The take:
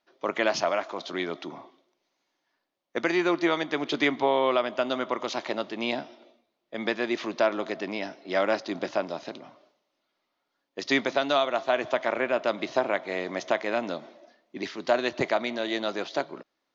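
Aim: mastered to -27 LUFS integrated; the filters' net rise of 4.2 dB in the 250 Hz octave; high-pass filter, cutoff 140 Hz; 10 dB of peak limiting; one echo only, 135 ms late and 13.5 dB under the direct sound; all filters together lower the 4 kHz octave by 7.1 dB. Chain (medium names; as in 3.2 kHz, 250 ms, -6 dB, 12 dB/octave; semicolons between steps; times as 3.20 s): high-pass 140 Hz; peaking EQ 250 Hz +6 dB; peaking EQ 4 kHz -9 dB; peak limiter -20.5 dBFS; delay 135 ms -13.5 dB; trim +4.5 dB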